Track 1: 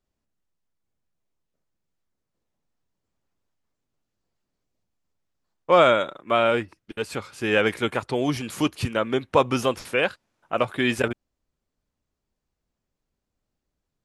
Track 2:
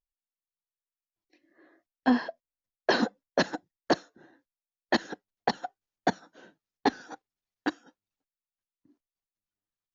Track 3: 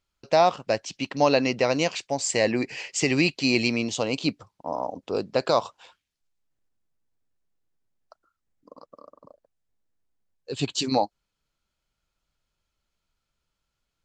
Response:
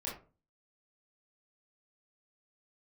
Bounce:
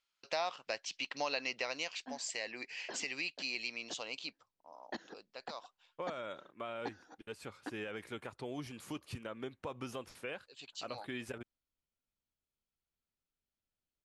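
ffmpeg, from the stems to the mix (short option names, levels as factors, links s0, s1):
-filter_complex "[0:a]alimiter=limit=0.237:level=0:latency=1:release=80,adelay=300,volume=0.158[s0];[1:a]volume=0.2[s1];[2:a]bandpass=f=3000:t=q:w=0.63:csg=0,afade=t=out:st=1.58:d=0.45:silence=0.446684,afade=t=out:st=4.1:d=0.44:silence=0.334965,asplit=2[s2][s3];[s3]apad=whole_len=438433[s4];[s1][s4]sidechaincompress=threshold=0.00178:ratio=3:attack=43:release=265[s5];[s0][s5][s2]amix=inputs=3:normalize=0,acompressor=threshold=0.0112:ratio=2"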